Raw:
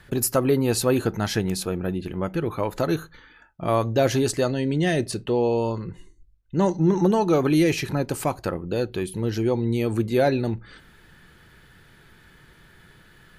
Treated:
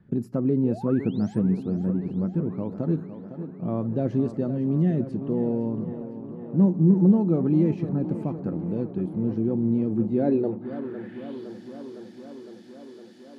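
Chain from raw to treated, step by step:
sound drawn into the spectrogram rise, 0:00.64–0:01.39, 390–10,000 Hz −27 dBFS
band-pass filter sweep 200 Hz → 5,300 Hz, 0:10.15–0:11.50
tape delay 509 ms, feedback 82%, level −10 dB, low-pass 4,300 Hz
level +5.5 dB

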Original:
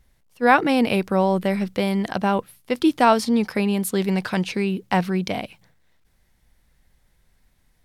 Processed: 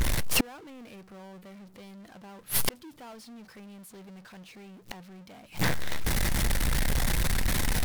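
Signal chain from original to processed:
power curve on the samples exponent 0.35
gate with flip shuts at −14 dBFS, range −36 dB

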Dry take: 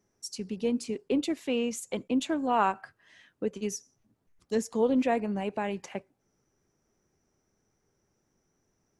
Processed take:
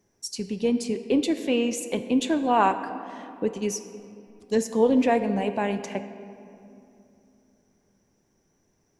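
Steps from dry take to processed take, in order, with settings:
notch filter 1,300 Hz, Q 7.7
on a send: low-shelf EQ 130 Hz −11 dB + convolution reverb RT60 2.7 s, pre-delay 7 ms, DRR 9 dB
on the sum: level +5 dB

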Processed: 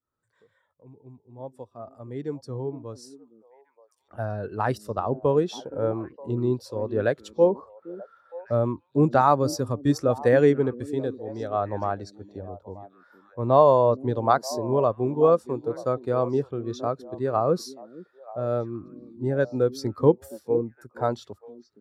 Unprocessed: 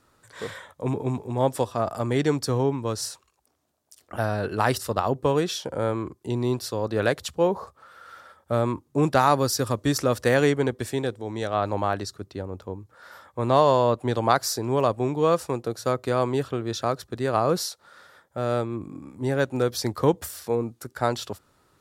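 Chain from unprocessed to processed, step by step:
fade in at the beginning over 5.13 s
echo through a band-pass that steps 466 ms, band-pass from 270 Hz, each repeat 1.4 octaves, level −7.5 dB
upward compression, threshold −39 dBFS
every bin expanded away from the loudest bin 1.5 to 1

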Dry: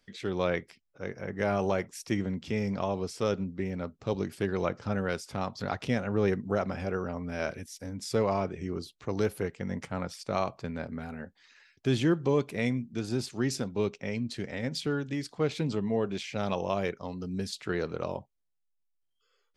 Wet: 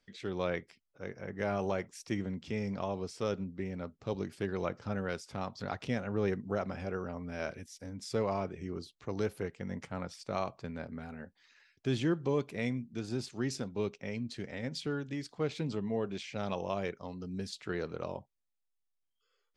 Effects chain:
low-pass filter 9,400 Hz 12 dB per octave
level −5 dB

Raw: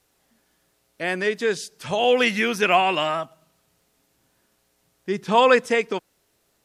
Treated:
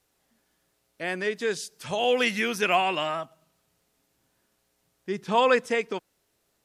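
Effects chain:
0:01.41–0:02.89: high-shelf EQ 5,000 Hz +5 dB
level −5 dB

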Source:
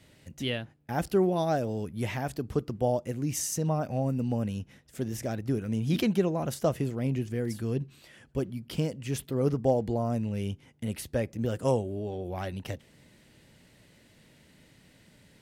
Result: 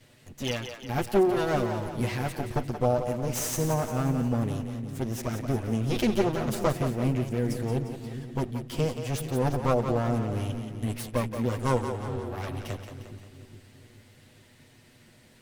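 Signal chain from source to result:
lower of the sound and its delayed copy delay 8.2 ms
echo with a time of its own for lows and highs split 350 Hz, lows 418 ms, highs 176 ms, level −8 dB
level +2.5 dB

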